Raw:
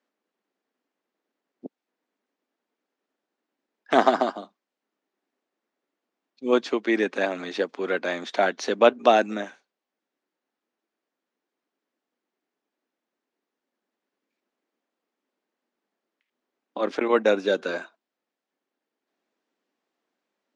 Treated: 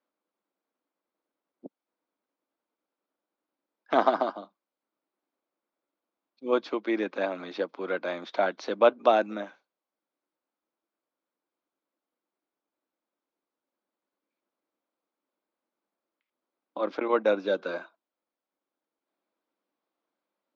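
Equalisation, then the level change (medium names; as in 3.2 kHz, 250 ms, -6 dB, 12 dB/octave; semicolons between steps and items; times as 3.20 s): cabinet simulation 190–5400 Hz, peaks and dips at 240 Hz -7 dB, 410 Hz -8 dB, 740 Hz -4 dB, 1.8 kHz -8 dB, 2.8 kHz -4 dB; treble shelf 3.1 kHz -10 dB; 0.0 dB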